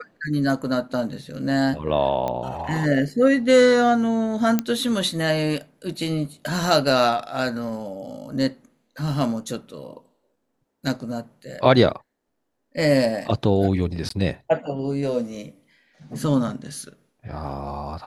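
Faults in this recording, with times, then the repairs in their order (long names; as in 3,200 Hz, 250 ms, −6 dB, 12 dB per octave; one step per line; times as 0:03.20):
0:02.28: click −14 dBFS
0:04.59: click −8 dBFS
0:14.09–0:14.10: drop-out 14 ms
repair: click removal
repair the gap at 0:14.09, 14 ms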